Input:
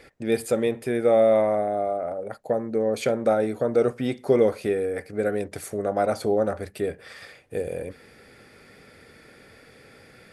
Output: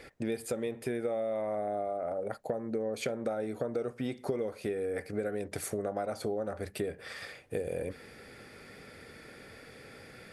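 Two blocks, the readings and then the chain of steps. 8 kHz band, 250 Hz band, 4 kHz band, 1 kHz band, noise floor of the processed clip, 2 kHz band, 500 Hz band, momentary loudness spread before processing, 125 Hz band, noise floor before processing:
-4.0 dB, -9.5 dB, -6.0 dB, -10.5 dB, -53 dBFS, -7.0 dB, -11.0 dB, 12 LU, -7.5 dB, -52 dBFS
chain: compression 12:1, threshold -30 dBFS, peak gain reduction 16 dB

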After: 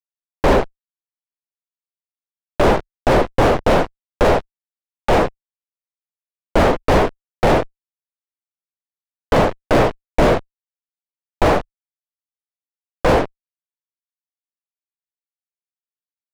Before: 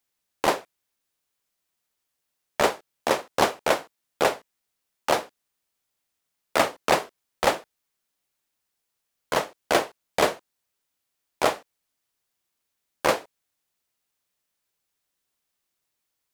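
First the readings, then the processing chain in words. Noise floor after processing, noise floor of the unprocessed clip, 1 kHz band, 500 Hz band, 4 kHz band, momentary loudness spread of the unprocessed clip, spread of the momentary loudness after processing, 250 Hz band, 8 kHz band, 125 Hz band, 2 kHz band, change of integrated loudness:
under -85 dBFS, -81 dBFS, +7.0 dB, +9.5 dB, +1.5 dB, 9 LU, 7 LU, +14.0 dB, -2.5 dB, +20.5 dB, +5.0 dB, +8.0 dB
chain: low-pass 2.8 kHz 12 dB/octave; fuzz box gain 45 dB, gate -48 dBFS; tilt EQ -3.5 dB/octave; trim -1 dB

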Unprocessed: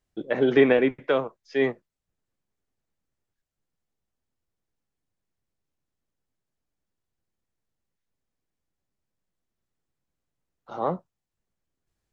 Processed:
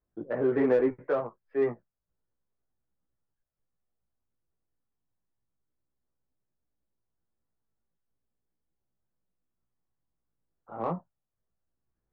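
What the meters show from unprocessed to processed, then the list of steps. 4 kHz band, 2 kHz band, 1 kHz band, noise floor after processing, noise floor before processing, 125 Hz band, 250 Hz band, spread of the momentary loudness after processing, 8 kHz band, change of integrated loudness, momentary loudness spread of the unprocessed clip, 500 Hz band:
under -20 dB, -11.5 dB, -5.0 dB, -85 dBFS, -85 dBFS, -4.0 dB, -5.0 dB, 14 LU, no reading, -5.5 dB, 12 LU, -4.5 dB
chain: low-pass 1.6 kHz 24 dB/octave; chorus voices 2, 0.33 Hz, delay 17 ms, depth 1.2 ms; in parallel at -4.5 dB: saturation -27 dBFS, distortion -7 dB; on the sum: trim -4 dB

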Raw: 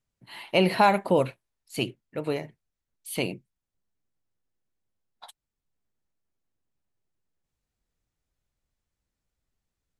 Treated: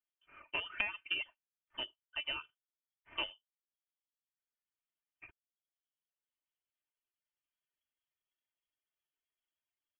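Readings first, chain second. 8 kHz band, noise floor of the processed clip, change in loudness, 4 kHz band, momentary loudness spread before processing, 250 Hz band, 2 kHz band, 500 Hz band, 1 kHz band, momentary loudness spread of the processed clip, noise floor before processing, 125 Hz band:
under -35 dB, under -85 dBFS, -13.0 dB, -4.5 dB, 23 LU, -29.5 dB, -6.5 dB, -27.5 dB, -23.0 dB, 22 LU, under -85 dBFS, -32.5 dB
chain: median filter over 15 samples; reverb removal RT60 1.2 s; tilt EQ +3.5 dB/octave; comb 3.4 ms, depth 77%; compression 5:1, threshold -24 dBFS, peak gain reduction 10 dB; Chebyshev shaper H 3 -11 dB, 5 -30 dB, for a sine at -11.5 dBFS; wow and flutter 17 cents; gain riding within 3 dB 0.5 s; frequency inversion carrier 3.3 kHz; trim +1 dB

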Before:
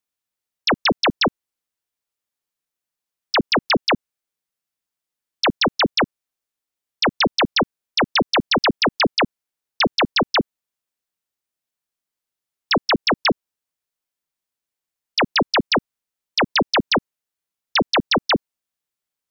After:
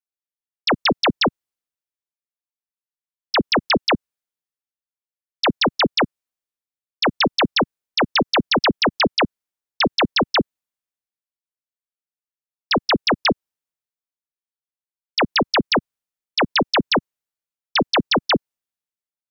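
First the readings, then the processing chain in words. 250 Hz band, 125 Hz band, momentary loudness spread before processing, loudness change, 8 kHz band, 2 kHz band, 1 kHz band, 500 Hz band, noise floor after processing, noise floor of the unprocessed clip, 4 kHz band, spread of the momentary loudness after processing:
+0.5 dB, +0.5 dB, 5 LU, 0.0 dB, no reading, -0.5 dB, 0.0 dB, +0.5 dB, under -85 dBFS, under -85 dBFS, 0.0 dB, 5 LU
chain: three bands expanded up and down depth 40%

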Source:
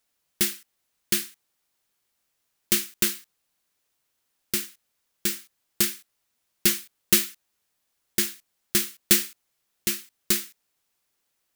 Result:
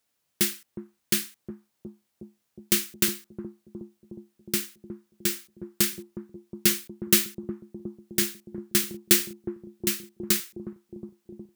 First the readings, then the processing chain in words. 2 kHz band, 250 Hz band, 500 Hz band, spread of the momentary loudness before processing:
-1.0 dB, +3.5 dB, +3.0 dB, 16 LU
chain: high-pass 80 Hz; bass shelf 330 Hz +5 dB; bucket-brigade echo 363 ms, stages 2048, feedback 73%, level -8 dB; trim -1 dB

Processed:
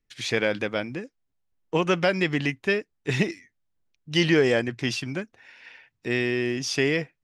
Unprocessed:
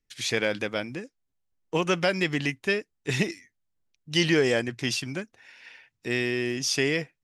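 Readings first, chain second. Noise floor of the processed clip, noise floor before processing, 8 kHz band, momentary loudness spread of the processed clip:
-77 dBFS, -80 dBFS, -4.0 dB, 14 LU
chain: treble shelf 5.7 kHz -11.5 dB; trim +2.5 dB

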